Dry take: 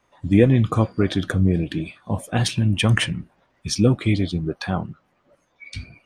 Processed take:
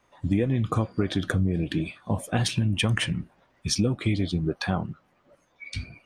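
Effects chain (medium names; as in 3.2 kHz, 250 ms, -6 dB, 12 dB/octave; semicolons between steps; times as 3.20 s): compression 6:1, threshold -20 dBFS, peak gain reduction 11.5 dB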